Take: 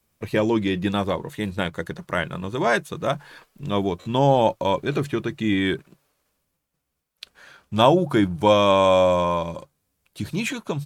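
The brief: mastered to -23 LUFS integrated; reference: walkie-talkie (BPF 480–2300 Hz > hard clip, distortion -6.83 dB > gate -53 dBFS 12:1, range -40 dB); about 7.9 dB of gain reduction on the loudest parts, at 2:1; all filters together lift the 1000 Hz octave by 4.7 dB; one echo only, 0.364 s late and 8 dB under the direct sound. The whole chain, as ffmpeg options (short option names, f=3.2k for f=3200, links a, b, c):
-af "equalizer=f=1k:t=o:g=6,acompressor=threshold=-22dB:ratio=2,highpass=480,lowpass=2.3k,aecho=1:1:364:0.398,asoftclip=type=hard:threshold=-24.5dB,agate=range=-40dB:threshold=-53dB:ratio=12,volume=8dB"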